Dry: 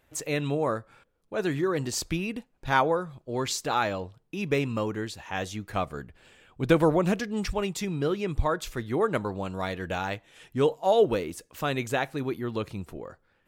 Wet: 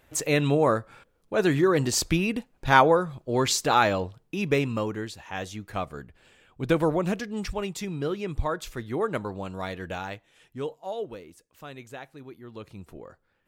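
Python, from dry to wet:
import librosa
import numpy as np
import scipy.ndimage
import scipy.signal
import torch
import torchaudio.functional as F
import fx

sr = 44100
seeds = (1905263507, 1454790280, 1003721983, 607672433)

y = fx.gain(x, sr, db=fx.line((4.03, 5.5), (5.22, -2.0), (9.83, -2.0), (11.12, -13.5), (12.39, -13.5), (12.95, -4.0)))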